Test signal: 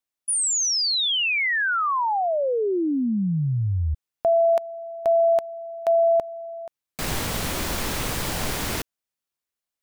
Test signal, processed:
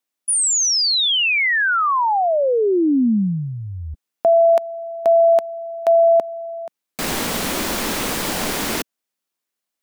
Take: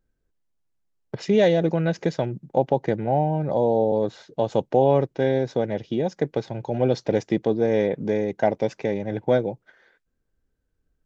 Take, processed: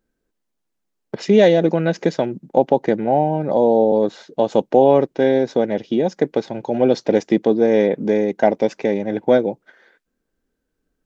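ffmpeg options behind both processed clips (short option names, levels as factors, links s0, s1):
-af "lowshelf=f=160:t=q:w=1.5:g=-9,volume=1.78"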